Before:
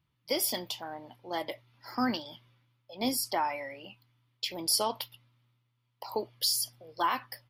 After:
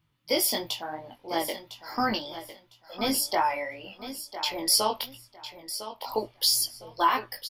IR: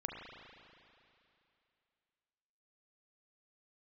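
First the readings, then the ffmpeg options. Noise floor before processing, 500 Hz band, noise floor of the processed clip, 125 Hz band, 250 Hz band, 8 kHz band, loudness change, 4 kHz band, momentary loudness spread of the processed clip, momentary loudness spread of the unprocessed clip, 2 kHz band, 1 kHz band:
−77 dBFS, +4.5 dB, −64 dBFS, +3.0 dB, +2.0 dB, +5.0 dB, +4.5 dB, +5.5 dB, 18 LU, 18 LU, +5.5 dB, +5.5 dB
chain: -af "aecho=1:1:1005|2010|3015:0.251|0.0578|0.0133,flanger=delay=18:depth=2.9:speed=2.9,asubboost=boost=5:cutoff=68,volume=8dB"

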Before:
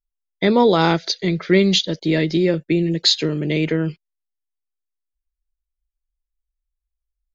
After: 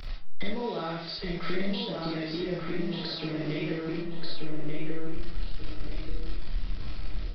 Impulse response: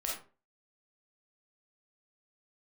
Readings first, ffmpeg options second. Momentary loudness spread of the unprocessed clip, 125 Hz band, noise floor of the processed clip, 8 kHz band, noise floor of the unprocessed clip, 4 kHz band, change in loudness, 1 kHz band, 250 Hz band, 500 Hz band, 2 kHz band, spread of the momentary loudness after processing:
7 LU, −11.5 dB, −37 dBFS, can't be measured, −83 dBFS, −15.0 dB, −16.0 dB, −14.5 dB, −13.0 dB, −14.5 dB, −12.0 dB, 8 LU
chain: -filter_complex "[0:a]aeval=exprs='val(0)+0.5*0.0355*sgn(val(0))':channel_layout=same,acompressor=threshold=-30dB:ratio=12,aresample=11025,acrusher=bits=7:mix=0:aa=0.000001,aresample=44100,asplit=2[link_01][link_02];[link_02]adelay=1185,lowpass=frequency=2400:poles=1,volume=-4dB,asplit=2[link_03][link_04];[link_04]adelay=1185,lowpass=frequency=2400:poles=1,volume=0.36,asplit=2[link_05][link_06];[link_06]adelay=1185,lowpass=frequency=2400:poles=1,volume=0.36,asplit=2[link_07][link_08];[link_08]adelay=1185,lowpass=frequency=2400:poles=1,volume=0.36,asplit=2[link_09][link_10];[link_10]adelay=1185,lowpass=frequency=2400:poles=1,volume=0.36[link_11];[link_01][link_03][link_05][link_07][link_09][link_11]amix=inputs=6:normalize=0,acrossover=split=240[link_12][link_13];[link_13]alimiter=level_in=2.5dB:limit=-24dB:level=0:latency=1:release=208,volume=-2.5dB[link_14];[link_12][link_14]amix=inputs=2:normalize=0[link_15];[1:a]atrim=start_sample=2205,afade=type=out:start_time=0.3:duration=0.01,atrim=end_sample=13671[link_16];[link_15][link_16]afir=irnorm=-1:irlink=0"

